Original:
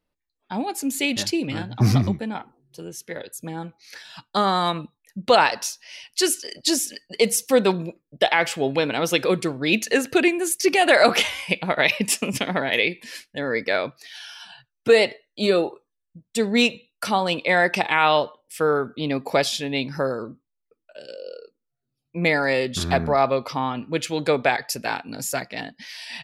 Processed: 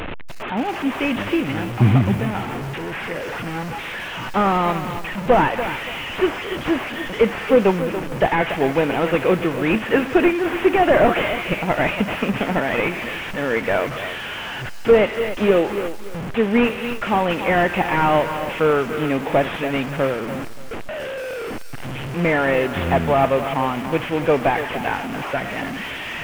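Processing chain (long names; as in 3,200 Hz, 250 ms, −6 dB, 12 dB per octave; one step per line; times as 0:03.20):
linear delta modulator 16 kbit/s, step −25.5 dBFS
feedback echo at a low word length 286 ms, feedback 35%, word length 6 bits, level −10.5 dB
level +3.5 dB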